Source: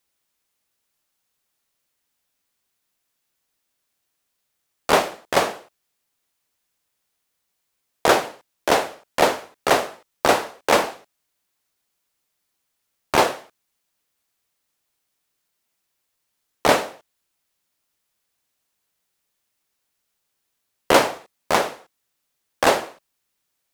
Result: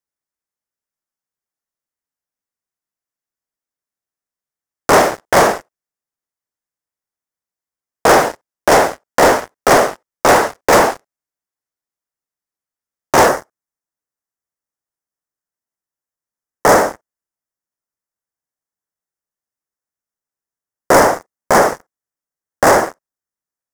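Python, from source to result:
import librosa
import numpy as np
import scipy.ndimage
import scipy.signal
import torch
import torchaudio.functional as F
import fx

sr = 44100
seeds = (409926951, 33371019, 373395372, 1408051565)

y = fx.high_shelf(x, sr, hz=7300.0, db=-5.0)
y = fx.leveller(y, sr, passes=5)
y = fx.band_shelf(y, sr, hz=3200.0, db=fx.steps((0.0, -8.5), (13.27, -15.5)), octaves=1.1)
y = y * librosa.db_to_amplitude(-2.0)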